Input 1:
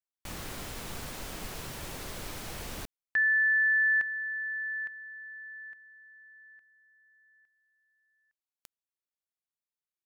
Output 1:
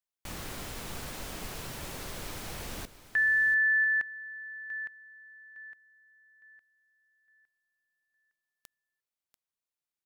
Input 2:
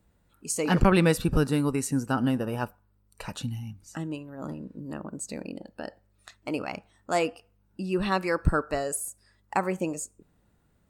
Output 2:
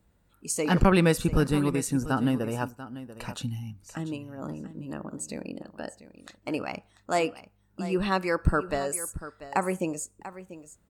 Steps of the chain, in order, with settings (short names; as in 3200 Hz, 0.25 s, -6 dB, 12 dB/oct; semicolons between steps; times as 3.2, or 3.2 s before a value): echo 0.69 s -14.5 dB